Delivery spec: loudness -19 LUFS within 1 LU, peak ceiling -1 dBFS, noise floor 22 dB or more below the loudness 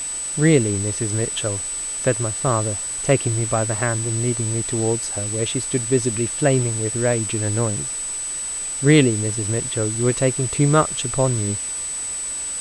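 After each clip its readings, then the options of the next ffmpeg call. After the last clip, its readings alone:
steady tone 8 kHz; tone level -25 dBFS; noise floor -28 dBFS; noise floor target -43 dBFS; loudness -20.5 LUFS; peak level -3.0 dBFS; loudness target -19.0 LUFS
-> -af "bandreject=f=8000:w=30"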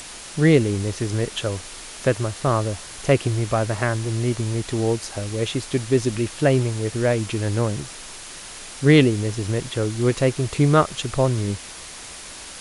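steady tone not found; noise floor -38 dBFS; noise floor target -44 dBFS
-> -af "afftdn=nr=6:nf=-38"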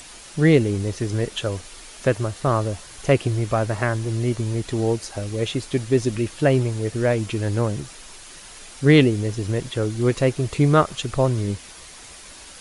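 noise floor -42 dBFS; noise floor target -44 dBFS
-> -af "afftdn=nr=6:nf=-42"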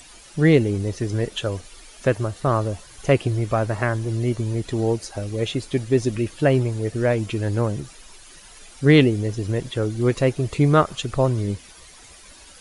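noise floor -46 dBFS; loudness -22.0 LUFS; peak level -3.0 dBFS; loudness target -19.0 LUFS
-> -af "volume=1.41,alimiter=limit=0.891:level=0:latency=1"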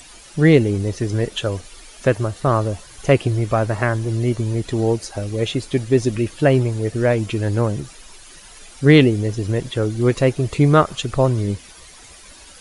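loudness -19.0 LUFS; peak level -1.0 dBFS; noise floor -43 dBFS

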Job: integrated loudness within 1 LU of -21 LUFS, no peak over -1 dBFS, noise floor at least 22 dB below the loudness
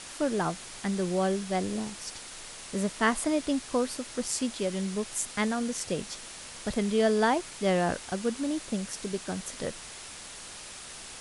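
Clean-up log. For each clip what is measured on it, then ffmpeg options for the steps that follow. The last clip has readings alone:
noise floor -44 dBFS; noise floor target -52 dBFS; loudness -30.0 LUFS; peak level -12.5 dBFS; loudness target -21.0 LUFS
-> -af "afftdn=nr=8:nf=-44"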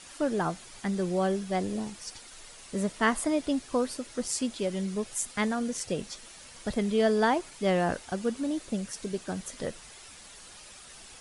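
noise floor -49 dBFS; noise floor target -52 dBFS
-> -af "afftdn=nr=6:nf=-49"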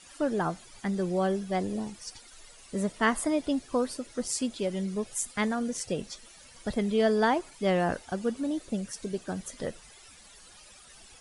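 noise floor -53 dBFS; loudness -30.5 LUFS; peak level -12.5 dBFS; loudness target -21.0 LUFS
-> -af "volume=2.99"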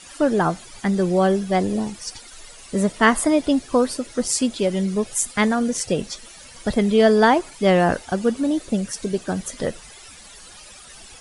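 loudness -21.0 LUFS; peak level -3.0 dBFS; noise floor -44 dBFS

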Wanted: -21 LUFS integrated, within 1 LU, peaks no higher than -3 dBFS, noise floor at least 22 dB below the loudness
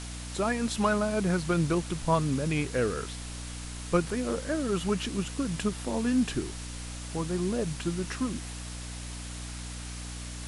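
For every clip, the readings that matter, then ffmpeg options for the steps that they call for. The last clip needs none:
hum 60 Hz; highest harmonic 300 Hz; hum level -38 dBFS; noise floor -39 dBFS; noise floor target -53 dBFS; loudness -31.0 LUFS; peak level -12.0 dBFS; loudness target -21.0 LUFS
-> -af "bandreject=f=60:t=h:w=6,bandreject=f=120:t=h:w=6,bandreject=f=180:t=h:w=6,bandreject=f=240:t=h:w=6,bandreject=f=300:t=h:w=6"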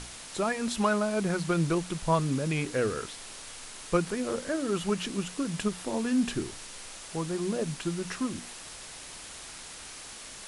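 hum not found; noise floor -45 dBFS; noise floor target -53 dBFS
-> -af "afftdn=nr=8:nf=-45"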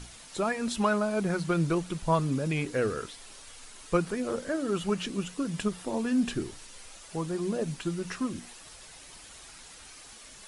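noise floor -50 dBFS; noise floor target -53 dBFS
-> -af "afftdn=nr=6:nf=-50"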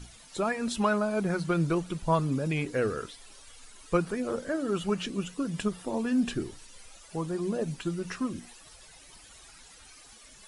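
noise floor -53 dBFS; loudness -30.5 LUFS; peak level -13.0 dBFS; loudness target -21.0 LUFS
-> -af "volume=2.99"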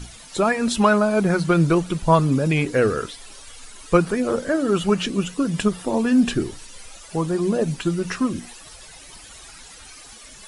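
loudness -21.0 LUFS; peak level -3.5 dBFS; noise floor -44 dBFS

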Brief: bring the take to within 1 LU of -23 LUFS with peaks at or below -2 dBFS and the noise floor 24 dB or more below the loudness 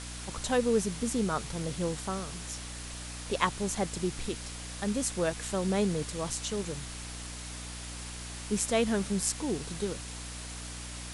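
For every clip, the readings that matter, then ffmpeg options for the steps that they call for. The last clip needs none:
hum 60 Hz; highest harmonic 300 Hz; hum level -42 dBFS; noise floor -41 dBFS; noise floor target -57 dBFS; loudness -33.0 LUFS; peak level -10.5 dBFS; loudness target -23.0 LUFS
-> -af "bandreject=f=60:t=h:w=4,bandreject=f=120:t=h:w=4,bandreject=f=180:t=h:w=4,bandreject=f=240:t=h:w=4,bandreject=f=300:t=h:w=4"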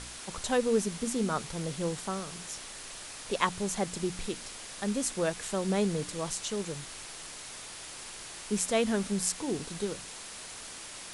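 hum not found; noise floor -44 dBFS; noise floor target -57 dBFS
-> -af "afftdn=nr=13:nf=-44"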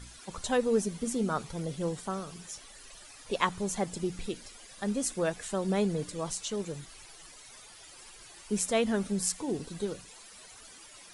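noise floor -52 dBFS; noise floor target -57 dBFS
-> -af "afftdn=nr=6:nf=-52"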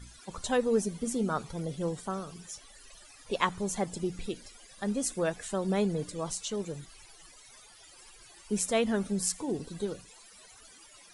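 noise floor -55 dBFS; noise floor target -57 dBFS
-> -af "afftdn=nr=6:nf=-55"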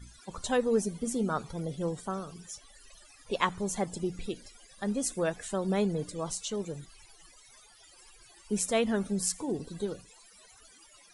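noise floor -58 dBFS; loudness -32.5 LUFS; peak level -10.5 dBFS; loudness target -23.0 LUFS
-> -af "volume=2.99,alimiter=limit=0.794:level=0:latency=1"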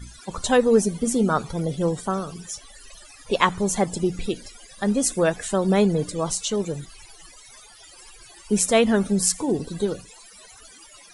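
loudness -23.0 LUFS; peak level -2.0 dBFS; noise floor -48 dBFS

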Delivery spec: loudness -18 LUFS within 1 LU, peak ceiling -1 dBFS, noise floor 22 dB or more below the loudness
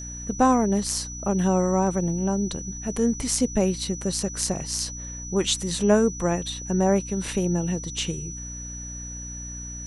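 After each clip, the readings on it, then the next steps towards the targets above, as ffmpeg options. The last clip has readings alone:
hum 60 Hz; highest harmonic 300 Hz; hum level -36 dBFS; steady tone 5.9 kHz; tone level -36 dBFS; loudness -25.0 LUFS; peak level -5.5 dBFS; loudness target -18.0 LUFS
-> -af "bandreject=f=60:t=h:w=4,bandreject=f=120:t=h:w=4,bandreject=f=180:t=h:w=4,bandreject=f=240:t=h:w=4,bandreject=f=300:t=h:w=4"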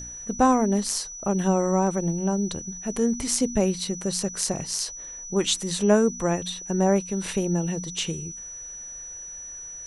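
hum not found; steady tone 5.9 kHz; tone level -36 dBFS
-> -af "bandreject=f=5900:w=30"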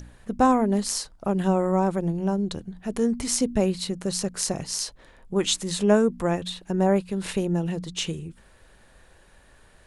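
steady tone not found; loudness -25.0 LUFS; peak level -6.0 dBFS; loudness target -18.0 LUFS
-> -af "volume=2.24,alimiter=limit=0.891:level=0:latency=1"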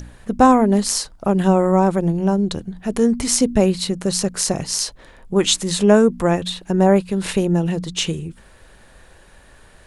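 loudness -18.0 LUFS; peak level -1.0 dBFS; noise floor -48 dBFS

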